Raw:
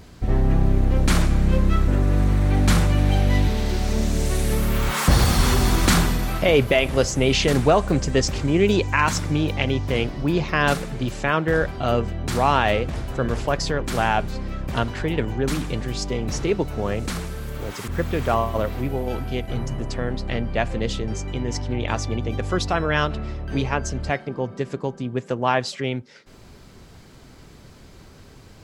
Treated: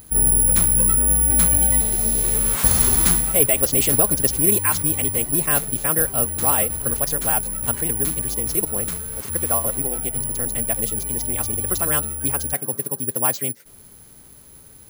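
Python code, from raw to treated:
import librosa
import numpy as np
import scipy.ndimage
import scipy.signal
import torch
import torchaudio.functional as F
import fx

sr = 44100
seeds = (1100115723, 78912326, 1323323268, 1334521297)

y = (np.kron(x[::4], np.eye(4)[0]) * 4)[:len(x)]
y = fx.stretch_vocoder(y, sr, factor=0.52)
y = F.gain(torch.from_numpy(y), -4.0).numpy()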